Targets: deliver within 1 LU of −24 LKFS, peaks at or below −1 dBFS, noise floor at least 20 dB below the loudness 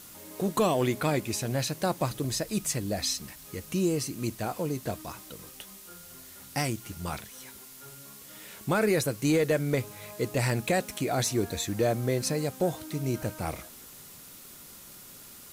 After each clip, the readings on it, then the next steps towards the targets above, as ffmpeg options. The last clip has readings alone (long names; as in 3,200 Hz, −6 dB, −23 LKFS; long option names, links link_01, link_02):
background noise floor −48 dBFS; target noise floor −50 dBFS; integrated loudness −29.5 LKFS; sample peak −15.5 dBFS; target loudness −24.0 LKFS
→ -af "afftdn=noise_reduction=6:noise_floor=-48"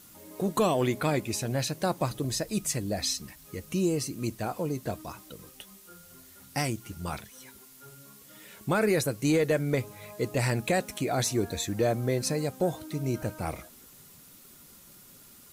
background noise floor −53 dBFS; integrated loudness −29.5 LKFS; sample peak −16.0 dBFS; target loudness −24.0 LKFS
→ -af "volume=5.5dB"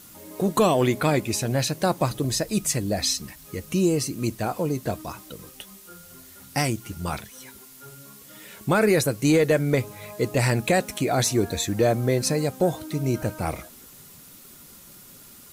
integrated loudness −24.0 LKFS; sample peak −10.5 dBFS; background noise floor −48 dBFS